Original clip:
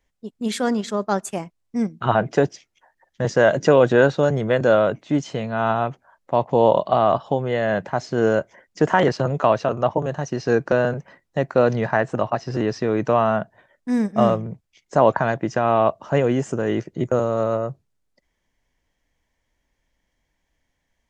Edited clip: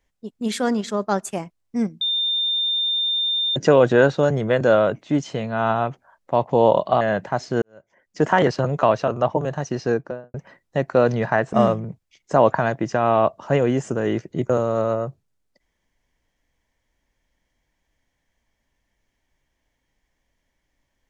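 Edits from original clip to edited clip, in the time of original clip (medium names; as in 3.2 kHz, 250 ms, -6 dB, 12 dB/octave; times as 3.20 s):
2.01–3.56 s: bleep 3.61 kHz -19 dBFS
7.01–7.62 s: delete
8.23–8.87 s: fade in quadratic
10.34–10.95 s: studio fade out
12.14–14.15 s: delete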